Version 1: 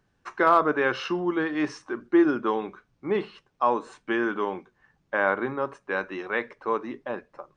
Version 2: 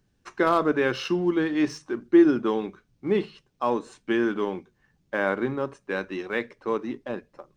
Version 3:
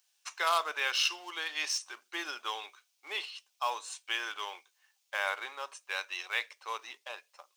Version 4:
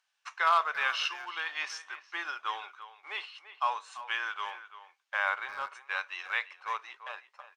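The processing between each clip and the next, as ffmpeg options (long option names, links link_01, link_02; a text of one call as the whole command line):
ffmpeg -i in.wav -filter_complex "[0:a]equalizer=frequency=1100:width=0.51:gain=-11.5,bandreject=frequency=50:width_type=h:width=6,bandreject=frequency=100:width_type=h:width=6,bandreject=frequency=150:width_type=h:width=6,asplit=2[link_01][link_02];[link_02]aeval=exprs='sgn(val(0))*max(abs(val(0))-0.00447,0)':channel_layout=same,volume=-7.5dB[link_03];[link_01][link_03]amix=inputs=2:normalize=0,volume=4dB" out.wav
ffmpeg -i in.wav -af "highpass=frequency=760:width=0.5412,highpass=frequency=760:width=1.3066,aexciter=amount=3.3:drive=5.9:freq=2400,volume=-4dB" out.wav
ffmpeg -i in.wav -filter_complex "[0:a]bandpass=frequency=1300:width_type=q:width=1.2:csg=0,asplit=2[link_01][link_02];[link_02]adelay=340,highpass=300,lowpass=3400,asoftclip=type=hard:threshold=-28dB,volume=-13dB[link_03];[link_01][link_03]amix=inputs=2:normalize=0,volume=5dB" out.wav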